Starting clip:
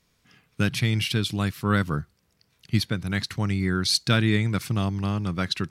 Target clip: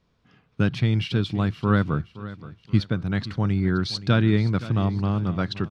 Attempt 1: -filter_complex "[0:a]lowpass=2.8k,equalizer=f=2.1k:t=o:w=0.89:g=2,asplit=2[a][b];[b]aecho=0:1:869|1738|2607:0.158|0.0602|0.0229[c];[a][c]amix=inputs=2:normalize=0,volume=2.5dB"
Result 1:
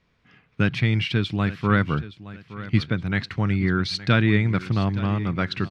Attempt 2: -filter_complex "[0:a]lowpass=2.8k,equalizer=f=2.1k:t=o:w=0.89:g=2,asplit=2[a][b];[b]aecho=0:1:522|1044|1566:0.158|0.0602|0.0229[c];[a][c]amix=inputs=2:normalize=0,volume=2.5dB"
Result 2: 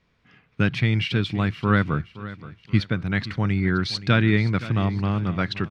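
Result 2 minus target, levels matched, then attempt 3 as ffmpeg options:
2000 Hz band +5.5 dB
-filter_complex "[0:a]lowpass=2.8k,equalizer=f=2.1k:t=o:w=0.89:g=-7.5,asplit=2[a][b];[b]aecho=0:1:522|1044|1566:0.158|0.0602|0.0229[c];[a][c]amix=inputs=2:normalize=0,volume=2.5dB"

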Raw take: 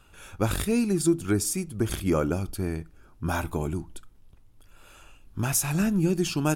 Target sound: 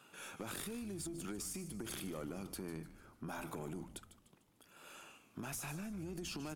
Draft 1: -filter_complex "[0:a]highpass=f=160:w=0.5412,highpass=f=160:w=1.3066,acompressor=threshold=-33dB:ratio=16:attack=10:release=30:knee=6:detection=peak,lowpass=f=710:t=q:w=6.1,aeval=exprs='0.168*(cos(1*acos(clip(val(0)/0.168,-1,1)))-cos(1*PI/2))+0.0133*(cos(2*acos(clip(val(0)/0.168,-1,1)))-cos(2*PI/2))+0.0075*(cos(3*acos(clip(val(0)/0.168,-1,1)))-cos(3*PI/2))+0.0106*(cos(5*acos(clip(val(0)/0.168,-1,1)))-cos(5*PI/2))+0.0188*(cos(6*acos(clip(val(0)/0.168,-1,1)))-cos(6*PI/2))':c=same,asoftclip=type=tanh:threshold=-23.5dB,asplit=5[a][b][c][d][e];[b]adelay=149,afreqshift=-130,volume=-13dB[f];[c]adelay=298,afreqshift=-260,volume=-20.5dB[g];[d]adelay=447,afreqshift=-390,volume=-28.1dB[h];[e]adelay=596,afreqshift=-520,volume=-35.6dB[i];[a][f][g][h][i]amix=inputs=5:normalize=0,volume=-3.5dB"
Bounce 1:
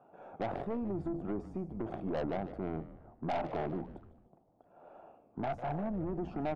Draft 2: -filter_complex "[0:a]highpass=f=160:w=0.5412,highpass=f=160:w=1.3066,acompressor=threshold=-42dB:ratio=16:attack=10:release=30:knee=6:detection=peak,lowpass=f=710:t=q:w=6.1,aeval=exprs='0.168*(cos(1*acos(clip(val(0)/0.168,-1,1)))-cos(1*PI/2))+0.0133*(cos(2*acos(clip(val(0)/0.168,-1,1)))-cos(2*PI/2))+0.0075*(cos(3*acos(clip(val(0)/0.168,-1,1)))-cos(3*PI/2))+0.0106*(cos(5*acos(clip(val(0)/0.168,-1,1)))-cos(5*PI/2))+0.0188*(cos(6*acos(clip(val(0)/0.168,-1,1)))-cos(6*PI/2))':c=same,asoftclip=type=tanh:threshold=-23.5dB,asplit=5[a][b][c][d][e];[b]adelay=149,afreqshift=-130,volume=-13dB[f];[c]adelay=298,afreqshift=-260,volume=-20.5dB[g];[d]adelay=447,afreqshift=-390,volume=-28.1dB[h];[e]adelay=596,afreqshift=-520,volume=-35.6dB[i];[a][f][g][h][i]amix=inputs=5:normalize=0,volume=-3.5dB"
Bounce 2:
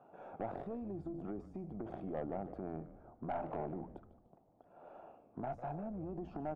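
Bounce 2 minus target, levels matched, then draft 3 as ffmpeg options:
1000 Hz band +6.0 dB
-filter_complex "[0:a]highpass=f=160:w=0.5412,highpass=f=160:w=1.3066,acompressor=threshold=-42dB:ratio=16:attack=10:release=30:knee=6:detection=peak,aeval=exprs='0.168*(cos(1*acos(clip(val(0)/0.168,-1,1)))-cos(1*PI/2))+0.0133*(cos(2*acos(clip(val(0)/0.168,-1,1)))-cos(2*PI/2))+0.0075*(cos(3*acos(clip(val(0)/0.168,-1,1)))-cos(3*PI/2))+0.0106*(cos(5*acos(clip(val(0)/0.168,-1,1)))-cos(5*PI/2))+0.0188*(cos(6*acos(clip(val(0)/0.168,-1,1)))-cos(6*PI/2))':c=same,asoftclip=type=tanh:threshold=-23.5dB,asplit=5[a][b][c][d][e];[b]adelay=149,afreqshift=-130,volume=-13dB[f];[c]adelay=298,afreqshift=-260,volume=-20.5dB[g];[d]adelay=447,afreqshift=-390,volume=-28.1dB[h];[e]adelay=596,afreqshift=-520,volume=-35.6dB[i];[a][f][g][h][i]amix=inputs=5:normalize=0,volume=-3.5dB"

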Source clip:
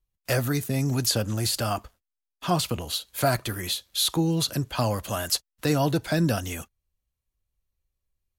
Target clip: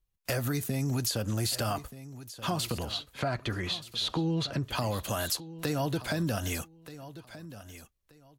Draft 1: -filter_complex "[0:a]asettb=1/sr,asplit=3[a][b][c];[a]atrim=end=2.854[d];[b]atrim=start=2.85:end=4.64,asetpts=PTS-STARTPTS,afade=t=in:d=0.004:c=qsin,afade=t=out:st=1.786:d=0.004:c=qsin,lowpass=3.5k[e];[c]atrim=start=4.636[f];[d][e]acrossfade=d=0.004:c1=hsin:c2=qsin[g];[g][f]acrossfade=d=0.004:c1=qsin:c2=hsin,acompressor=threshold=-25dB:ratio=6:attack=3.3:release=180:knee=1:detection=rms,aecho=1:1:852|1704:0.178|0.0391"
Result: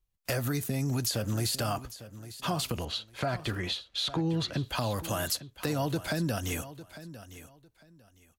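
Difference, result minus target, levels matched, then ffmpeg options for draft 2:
echo 0.377 s early
-filter_complex "[0:a]asettb=1/sr,asplit=3[a][b][c];[a]atrim=end=2.854[d];[b]atrim=start=2.85:end=4.64,asetpts=PTS-STARTPTS,afade=t=in:d=0.004:c=qsin,afade=t=out:st=1.786:d=0.004:c=qsin,lowpass=3.5k[e];[c]atrim=start=4.636[f];[d][e]acrossfade=d=0.004:c1=hsin:c2=qsin[g];[g][f]acrossfade=d=0.004:c1=qsin:c2=hsin,acompressor=threshold=-25dB:ratio=6:attack=3.3:release=180:knee=1:detection=rms,aecho=1:1:1229|2458:0.178|0.0391"

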